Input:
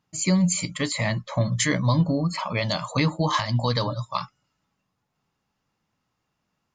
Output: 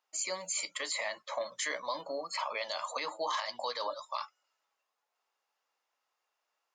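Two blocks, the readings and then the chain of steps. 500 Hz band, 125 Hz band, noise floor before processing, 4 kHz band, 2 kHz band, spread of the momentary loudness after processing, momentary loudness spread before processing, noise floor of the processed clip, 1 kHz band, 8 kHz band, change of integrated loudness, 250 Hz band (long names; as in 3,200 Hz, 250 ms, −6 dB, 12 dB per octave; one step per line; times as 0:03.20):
−8.5 dB, below −40 dB, −78 dBFS, −8.0 dB, −8.0 dB, 4 LU, 7 LU, −85 dBFS, −7.0 dB, −7.5 dB, −11.5 dB, −29.5 dB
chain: high-pass filter 500 Hz 24 dB per octave
brickwall limiter −20.5 dBFS, peak gain reduction 9.5 dB
level −4 dB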